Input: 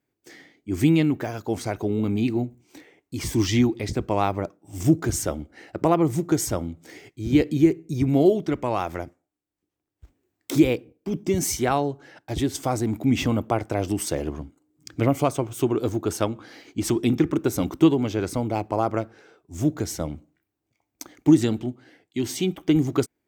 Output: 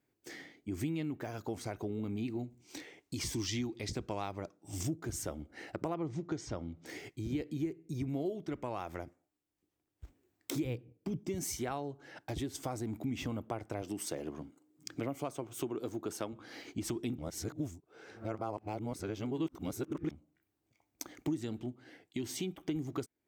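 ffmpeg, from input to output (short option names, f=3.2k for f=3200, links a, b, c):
-filter_complex "[0:a]asettb=1/sr,asplit=3[a][b][c];[a]atrim=end=2.394[d];[b]atrim=start=2.39:end=4.88,asetpts=PTS-STARTPTS,afade=t=in:d=0.004:c=qsin,afade=t=out:st=2.486:d=0.004:c=qsin,equalizer=f=5.1k:t=o:w=1.8:g=7.5[e];[c]atrim=start=4.876[f];[d][e]acrossfade=d=0.004:c1=hsin:c2=qsin[g];[g][f]acrossfade=d=0.004:c1=qsin:c2=hsin,asettb=1/sr,asplit=3[h][i][j];[h]atrim=end=5.944[k];[i]atrim=start=5.94:end=6.86,asetpts=PTS-STARTPTS,afade=t=in:d=0.004:c=qsin,afade=t=out:st=0.916:d=0.004:c=qsin,lowpass=f=5.8k:w=0.5412,lowpass=f=5.8k:w=1.3066[l];[j]atrim=start=6.856[m];[k][l]acrossfade=d=0.004:c1=hsin:c2=qsin[n];[n][m]acrossfade=d=0.004:c1=qsin:c2=hsin,asettb=1/sr,asplit=3[o][p][q];[o]atrim=end=10.654[r];[p]atrim=start=10.65:end=11.2,asetpts=PTS-STARTPTS,afade=t=in:d=0.004:c=qsin,afade=t=out:st=0.546:d=0.004:c=qsin,equalizer=f=120:w=1.5:g=13[s];[q]atrim=start=11.196[t];[r][s]acrossfade=d=0.004:c1=hsin:c2=qsin[u];[u][t]acrossfade=d=0.004:c1=qsin:c2=hsin,asettb=1/sr,asplit=3[v][w][x];[v]atrim=end=13.824[y];[w]atrim=start=13.82:end=16.33,asetpts=PTS-STARTPTS,afade=t=in:d=0.004:c=qsin,afade=t=out:st=2.506:d=0.004:c=qsin,highpass=150[z];[x]atrim=start=16.326[aa];[y][z]acrossfade=d=0.004:c1=hsin:c2=qsin[ab];[ab][aa]acrossfade=d=0.004:c1=qsin:c2=hsin,asplit=3[ac][ad][ae];[ac]atrim=end=17.182[af];[ad]atrim=start=17.178:end=20.112,asetpts=PTS-STARTPTS,areverse[ag];[ae]atrim=start=20.108[ah];[af][ag]acrossfade=d=0.004:c1=hsin:c2=hsin[ai];[ai][ah]acrossfade=d=0.004:c1=hsin:c2=hsin,acompressor=threshold=-38dB:ratio=3,volume=-1dB"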